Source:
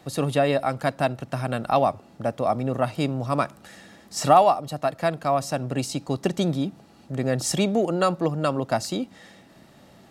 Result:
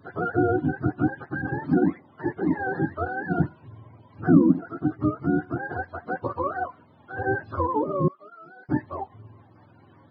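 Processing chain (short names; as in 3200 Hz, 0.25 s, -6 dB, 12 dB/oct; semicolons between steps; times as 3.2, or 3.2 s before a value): spectrum mirrored in octaves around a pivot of 450 Hz; downsampling 11025 Hz; 8.08–8.69 differentiator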